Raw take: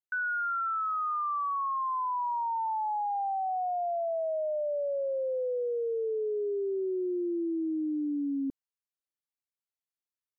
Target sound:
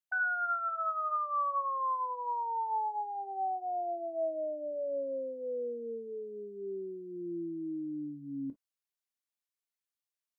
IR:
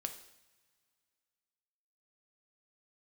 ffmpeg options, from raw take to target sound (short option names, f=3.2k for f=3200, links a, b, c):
-filter_complex "[0:a]tiltshelf=f=660:g=-5.5,asplit=2[a][b];[b]asetrate=22050,aresample=44100,atempo=2,volume=-16dB[c];[a][c]amix=inputs=2:normalize=0[d];[1:a]atrim=start_sample=2205,atrim=end_sample=3969,asetrate=66150,aresample=44100[e];[d][e]afir=irnorm=-1:irlink=0"